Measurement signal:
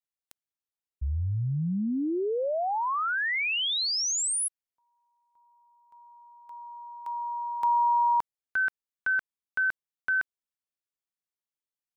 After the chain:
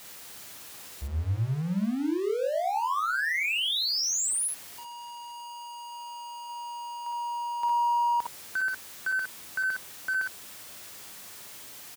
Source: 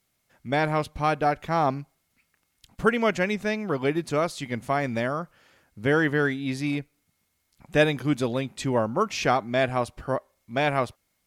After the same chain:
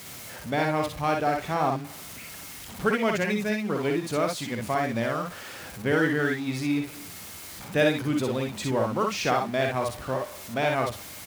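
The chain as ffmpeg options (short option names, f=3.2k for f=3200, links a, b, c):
-filter_complex "[0:a]aeval=exprs='val(0)+0.5*0.0224*sgn(val(0))':c=same,highpass=62,asplit=2[a][b];[b]aecho=0:1:52|62:0.473|0.596[c];[a][c]amix=inputs=2:normalize=0,volume=-4dB"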